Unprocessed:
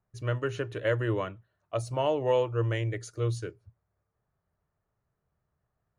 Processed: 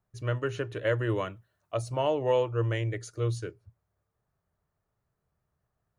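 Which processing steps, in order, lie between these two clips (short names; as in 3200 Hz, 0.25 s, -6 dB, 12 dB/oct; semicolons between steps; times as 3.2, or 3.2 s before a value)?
1.09–1.75 high shelf 4500 Hz +8.5 dB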